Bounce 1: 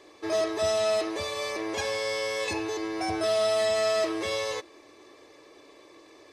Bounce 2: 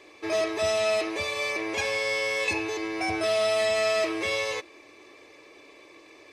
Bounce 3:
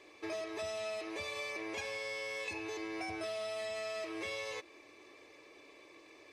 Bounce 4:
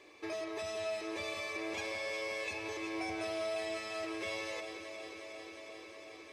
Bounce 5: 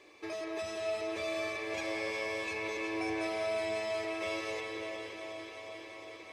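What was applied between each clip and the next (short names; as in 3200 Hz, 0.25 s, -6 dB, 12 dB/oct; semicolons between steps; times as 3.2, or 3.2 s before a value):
bell 2400 Hz +10 dB 0.45 oct
compressor, threshold -31 dBFS, peak gain reduction 9.5 dB; gain -6.5 dB
echo with dull and thin repeats by turns 0.18 s, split 1800 Hz, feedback 89%, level -8 dB
reverb RT60 4.1 s, pre-delay 0.186 s, DRR 1.5 dB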